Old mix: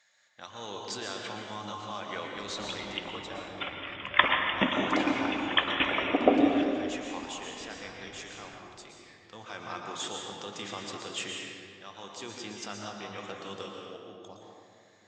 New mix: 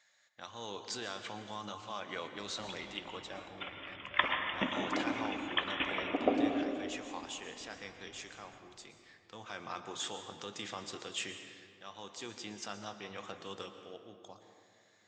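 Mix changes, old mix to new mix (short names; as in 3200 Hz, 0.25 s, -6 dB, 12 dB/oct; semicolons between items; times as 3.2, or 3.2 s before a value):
speech: send -10.0 dB; background -7.5 dB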